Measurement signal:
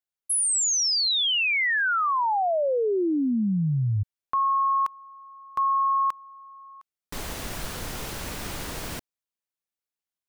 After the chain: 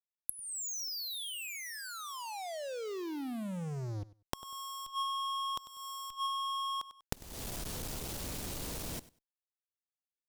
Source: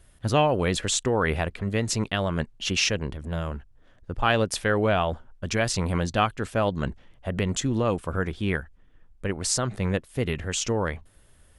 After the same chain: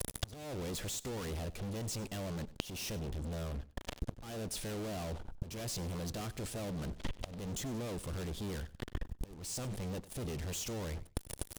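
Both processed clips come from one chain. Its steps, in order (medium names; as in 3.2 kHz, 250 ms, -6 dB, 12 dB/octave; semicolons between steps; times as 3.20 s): fuzz box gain 46 dB, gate -49 dBFS; inverted gate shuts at -14 dBFS, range -30 dB; peaking EQ 1.6 kHz -8.5 dB 1.9 oct; on a send: feedback delay 97 ms, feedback 17%, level -19 dB; on the sum: compression 20:1, threshold -40 dBFS; trim +6.5 dB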